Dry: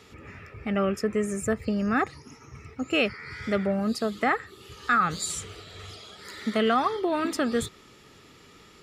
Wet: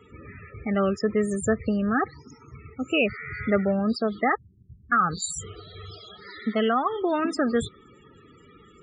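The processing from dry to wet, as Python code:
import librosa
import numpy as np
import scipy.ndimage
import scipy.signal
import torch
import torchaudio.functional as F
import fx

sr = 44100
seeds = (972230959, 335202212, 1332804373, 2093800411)

y = fx.cheby2_lowpass(x, sr, hz=650.0, order=4, stop_db=60, at=(4.35, 4.92))
y = fx.spec_topn(y, sr, count=32)
y = fx.rider(y, sr, range_db=10, speed_s=0.5)
y = F.gain(torch.from_numpy(y), 2.5).numpy()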